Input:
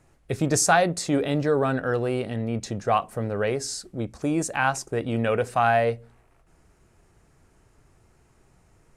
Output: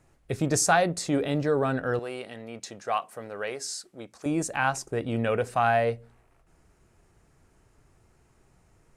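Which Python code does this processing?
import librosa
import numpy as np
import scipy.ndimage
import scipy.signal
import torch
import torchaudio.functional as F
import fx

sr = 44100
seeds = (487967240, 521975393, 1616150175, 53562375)

y = fx.highpass(x, sr, hz=830.0, slope=6, at=(1.99, 4.26))
y = F.gain(torch.from_numpy(y), -2.5).numpy()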